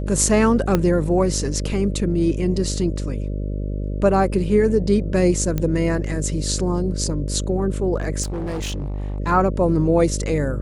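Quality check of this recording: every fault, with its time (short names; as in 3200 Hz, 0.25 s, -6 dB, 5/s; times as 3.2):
buzz 50 Hz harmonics 12 -25 dBFS
0.75 pop -5 dBFS
5.58 pop -10 dBFS
8.22–9.2 clipped -23 dBFS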